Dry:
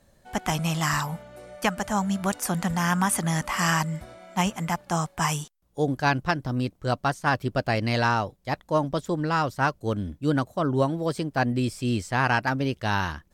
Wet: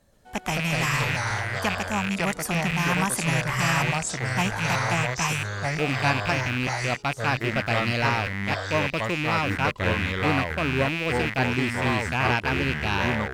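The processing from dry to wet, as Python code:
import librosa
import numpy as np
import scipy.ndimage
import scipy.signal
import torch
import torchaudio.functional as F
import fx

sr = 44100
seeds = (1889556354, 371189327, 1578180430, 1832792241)

y = fx.rattle_buzz(x, sr, strikes_db=-36.0, level_db=-15.0)
y = fx.echo_pitch(y, sr, ms=123, semitones=-4, count=2, db_per_echo=-3.0)
y = y * librosa.db_to_amplitude(-2.5)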